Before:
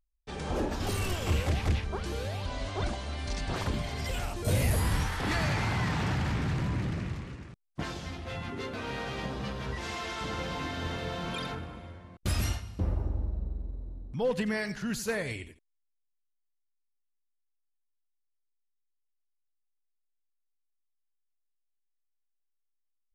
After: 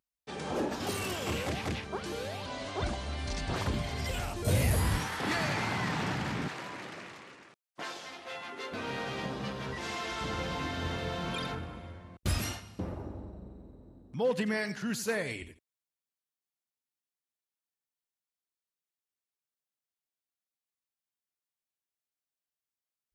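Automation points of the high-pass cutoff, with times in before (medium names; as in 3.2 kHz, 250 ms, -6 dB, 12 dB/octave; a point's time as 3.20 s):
160 Hz
from 2.82 s 48 Hz
from 4.98 s 170 Hz
from 6.48 s 500 Hz
from 8.72 s 120 Hz
from 10.09 s 41 Hz
from 12.38 s 150 Hz
from 15.42 s 55 Hz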